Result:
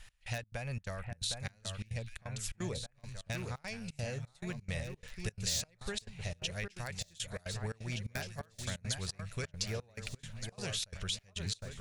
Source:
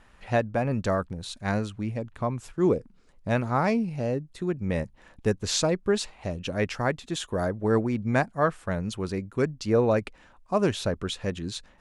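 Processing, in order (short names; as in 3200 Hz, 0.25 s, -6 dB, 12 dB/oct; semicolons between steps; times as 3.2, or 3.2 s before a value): passive tone stack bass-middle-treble 10-0-10; in parallel at -6 dB: wrapped overs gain 22.5 dB; on the sum: compressor, threshold -40 dBFS, peak gain reduction 15.5 dB; bell 1100 Hz -11.5 dB 1.4 oct; on a send: echo with dull and thin repeats by turns 0.76 s, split 2100 Hz, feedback 71%, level -5.5 dB; on the sum: step gate "x..xx.xxx.xxx.xx" 173 bpm -24 dB; gain +7 dB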